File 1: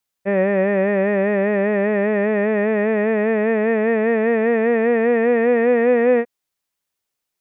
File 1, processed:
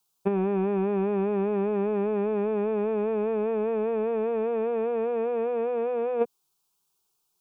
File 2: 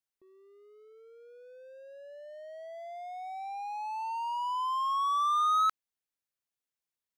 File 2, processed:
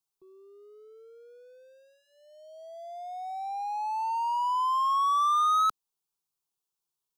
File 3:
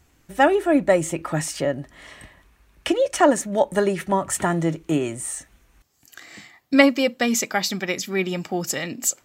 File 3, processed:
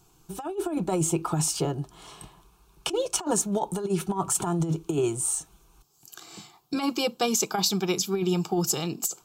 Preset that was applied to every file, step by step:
phaser with its sweep stopped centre 380 Hz, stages 8
compressor whose output falls as the input rises −25 dBFS, ratio −0.5
loudness normalisation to −27 LKFS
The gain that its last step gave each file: +1.0, +5.5, +1.0 decibels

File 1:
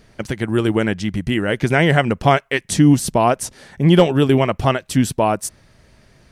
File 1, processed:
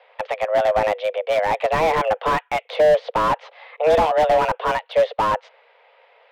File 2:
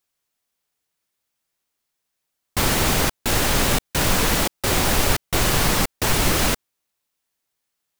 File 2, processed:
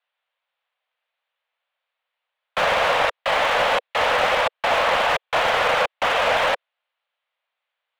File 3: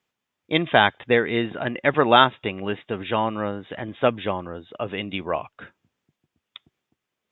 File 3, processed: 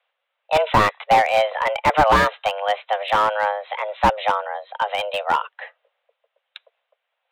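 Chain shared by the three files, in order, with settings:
single-sideband voice off tune +310 Hz 190–3,200 Hz
slew-rate limiting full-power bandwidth 130 Hz
loudness normalisation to −20 LKFS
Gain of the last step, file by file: +1.5, +5.0, +6.5 decibels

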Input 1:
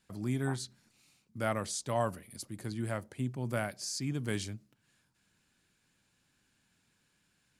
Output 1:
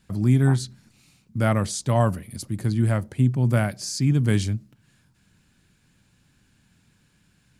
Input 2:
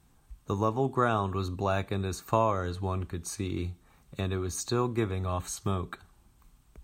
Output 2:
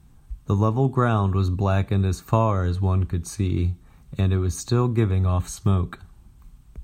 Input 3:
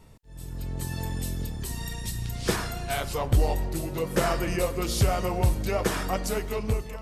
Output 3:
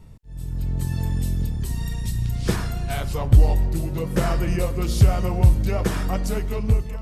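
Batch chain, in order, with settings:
bass and treble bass +10 dB, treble −1 dB
loudness normalisation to −23 LKFS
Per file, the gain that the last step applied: +8.0, +2.5, −1.0 decibels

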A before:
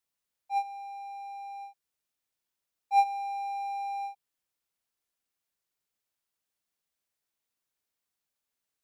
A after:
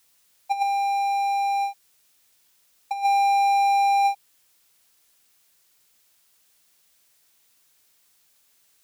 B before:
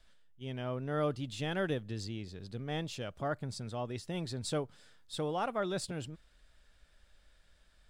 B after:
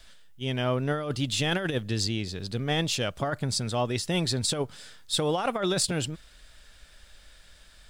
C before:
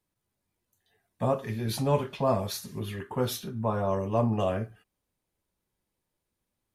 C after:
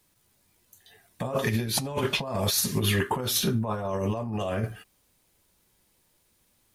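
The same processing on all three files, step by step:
high-shelf EQ 2,000 Hz +7.5 dB
brickwall limiter −22 dBFS
compressor whose output falls as the input rises −34 dBFS, ratio −0.5
normalise the peak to −12 dBFS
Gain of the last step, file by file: +15.0, +9.0, +8.0 decibels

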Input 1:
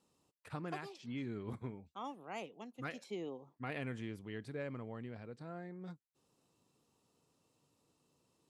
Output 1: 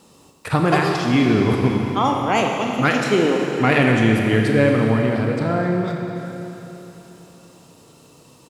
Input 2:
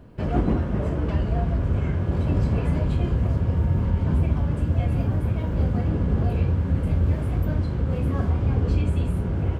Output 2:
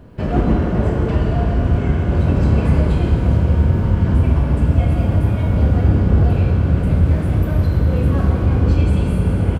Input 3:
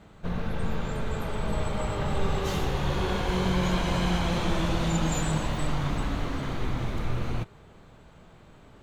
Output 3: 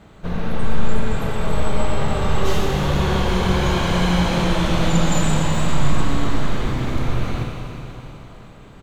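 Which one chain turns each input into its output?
single-tap delay 706 ms −21 dB
four-comb reverb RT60 3.4 s, combs from 28 ms, DRR 1 dB
normalise the peak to −3 dBFS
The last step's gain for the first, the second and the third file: +24.5, +5.0, +5.0 decibels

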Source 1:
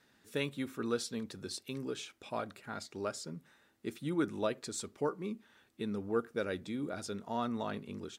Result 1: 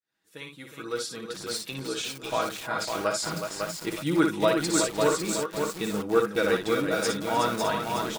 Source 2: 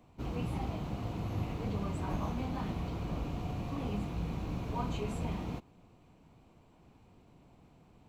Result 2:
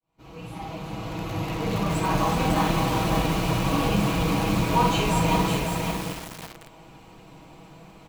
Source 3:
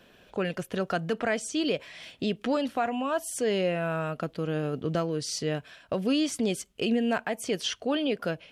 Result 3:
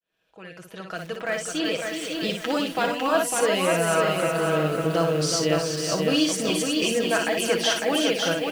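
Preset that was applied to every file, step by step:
fade in at the beginning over 2.45 s
low-shelf EQ 470 Hz −8.5 dB
comb filter 6.2 ms, depth 59%
multi-tap delay 59/305/368 ms −6/−17/−7 dB
feedback echo at a low word length 552 ms, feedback 35%, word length 8 bits, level −3.5 dB
normalise the peak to −9 dBFS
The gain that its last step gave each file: +11.5, +16.0, +5.0 decibels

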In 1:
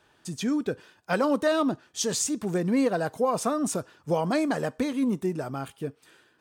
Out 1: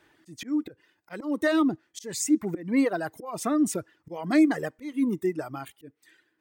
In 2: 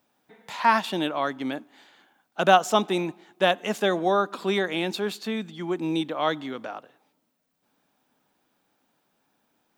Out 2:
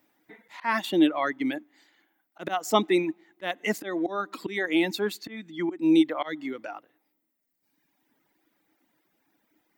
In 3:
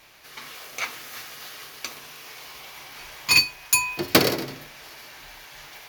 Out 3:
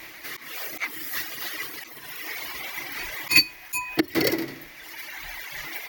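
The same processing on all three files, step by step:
reverb reduction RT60 1.7 s
volume swells 236 ms
thirty-one-band graphic EQ 315 Hz +12 dB, 2,000 Hz +11 dB, 16,000 Hz +12 dB
loudness normalisation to −27 LKFS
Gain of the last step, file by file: −2.0, −0.5, +7.5 decibels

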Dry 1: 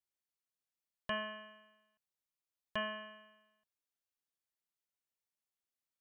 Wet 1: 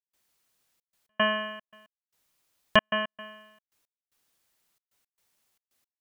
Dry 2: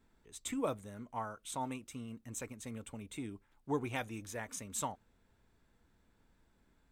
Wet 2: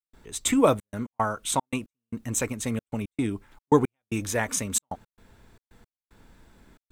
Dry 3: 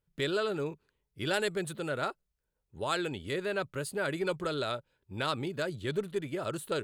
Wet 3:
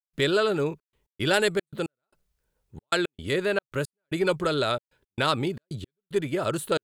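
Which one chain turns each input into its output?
gate pattern ".xxxxx.x.xxx.x." 113 BPM −60 dB
loudness normalisation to −27 LKFS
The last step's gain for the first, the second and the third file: +19.0, +16.0, +8.0 decibels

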